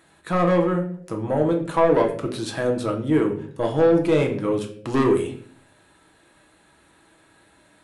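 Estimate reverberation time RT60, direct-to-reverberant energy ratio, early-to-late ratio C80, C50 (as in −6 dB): 0.55 s, 1.5 dB, 13.0 dB, 9.5 dB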